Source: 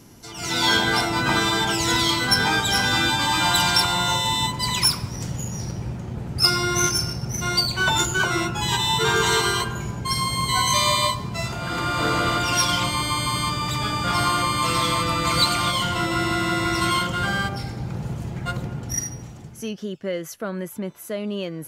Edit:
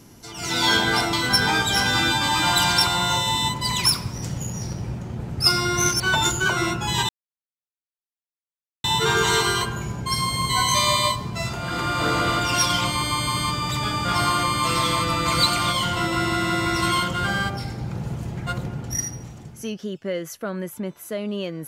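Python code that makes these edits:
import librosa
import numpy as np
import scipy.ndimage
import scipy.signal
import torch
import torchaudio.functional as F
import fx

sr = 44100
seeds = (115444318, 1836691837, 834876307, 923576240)

y = fx.edit(x, sr, fx.cut(start_s=1.13, length_s=0.98),
    fx.cut(start_s=6.98, length_s=0.76),
    fx.insert_silence(at_s=8.83, length_s=1.75), tone=tone)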